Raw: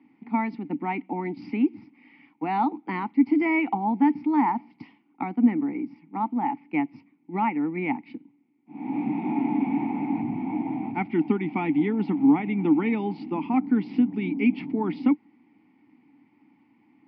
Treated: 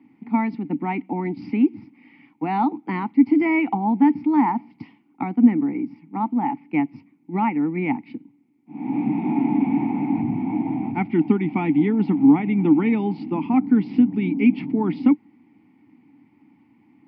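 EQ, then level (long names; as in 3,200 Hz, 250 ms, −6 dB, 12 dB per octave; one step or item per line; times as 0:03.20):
low-shelf EQ 170 Hz +11 dB
+1.5 dB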